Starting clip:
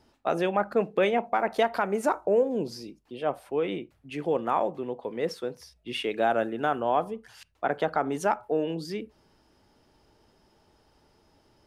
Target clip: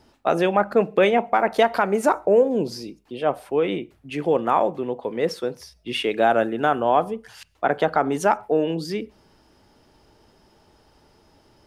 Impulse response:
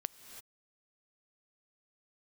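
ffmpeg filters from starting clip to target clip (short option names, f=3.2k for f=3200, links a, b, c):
-filter_complex "[0:a]asplit=2[a][b];[1:a]atrim=start_sample=2205,afade=t=out:st=0.31:d=0.01,atrim=end_sample=14112,asetrate=83790,aresample=44100[c];[b][c]afir=irnorm=-1:irlink=0,volume=-8dB[d];[a][d]amix=inputs=2:normalize=0,volume=5dB"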